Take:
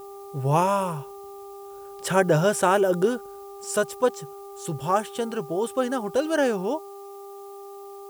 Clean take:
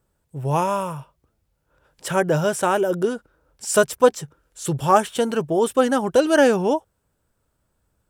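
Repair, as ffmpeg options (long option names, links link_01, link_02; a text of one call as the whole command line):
ffmpeg -i in.wav -af "bandreject=frequency=398.2:width_type=h:width=4,bandreject=frequency=796.4:width_type=h:width=4,bandreject=frequency=1194.6:width_type=h:width=4,agate=range=-21dB:threshold=-33dB,asetnsamples=nb_out_samples=441:pad=0,asendcmd='3.43 volume volume 7dB',volume=0dB" out.wav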